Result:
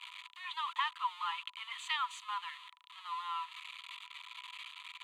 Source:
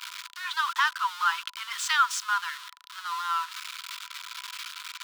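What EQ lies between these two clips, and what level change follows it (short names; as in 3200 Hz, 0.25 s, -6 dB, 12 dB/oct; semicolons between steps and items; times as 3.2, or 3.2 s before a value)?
LPF 5800 Hz 12 dB/oct; fixed phaser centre 1500 Hz, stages 6; -5.5 dB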